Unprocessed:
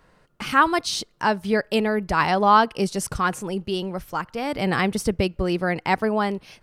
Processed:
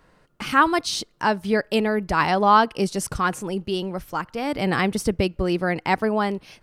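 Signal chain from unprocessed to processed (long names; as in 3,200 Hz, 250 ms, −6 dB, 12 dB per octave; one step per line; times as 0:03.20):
parametric band 300 Hz +3 dB 0.36 octaves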